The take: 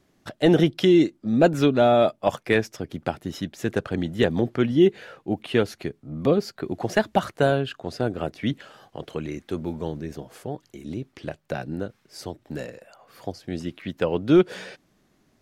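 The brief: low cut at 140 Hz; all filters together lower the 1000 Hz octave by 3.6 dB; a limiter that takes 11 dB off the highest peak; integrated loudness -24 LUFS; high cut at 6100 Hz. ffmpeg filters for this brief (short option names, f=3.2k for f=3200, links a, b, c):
-af "highpass=140,lowpass=6.1k,equalizer=f=1k:t=o:g=-6,volume=7dB,alimiter=limit=-11dB:level=0:latency=1"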